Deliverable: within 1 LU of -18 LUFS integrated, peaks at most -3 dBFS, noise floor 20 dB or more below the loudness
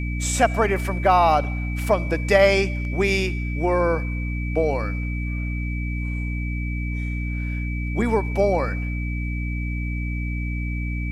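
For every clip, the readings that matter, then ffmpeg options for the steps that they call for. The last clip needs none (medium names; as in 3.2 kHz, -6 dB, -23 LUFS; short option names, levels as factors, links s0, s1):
hum 60 Hz; highest harmonic 300 Hz; hum level -24 dBFS; steady tone 2.3 kHz; tone level -34 dBFS; loudness -23.5 LUFS; peak level -4.0 dBFS; loudness target -18.0 LUFS
-> -af "bandreject=f=60:t=h:w=6,bandreject=f=120:t=h:w=6,bandreject=f=180:t=h:w=6,bandreject=f=240:t=h:w=6,bandreject=f=300:t=h:w=6"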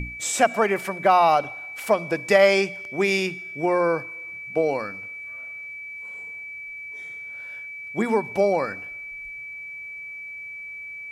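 hum not found; steady tone 2.3 kHz; tone level -34 dBFS
-> -af "bandreject=f=2300:w=30"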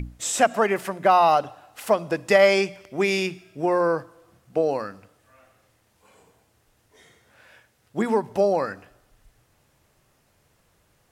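steady tone not found; loudness -22.5 LUFS; peak level -4.5 dBFS; loudness target -18.0 LUFS
-> -af "volume=1.68,alimiter=limit=0.708:level=0:latency=1"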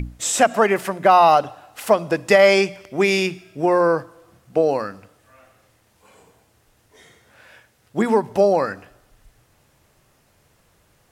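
loudness -18.0 LUFS; peak level -3.0 dBFS; noise floor -61 dBFS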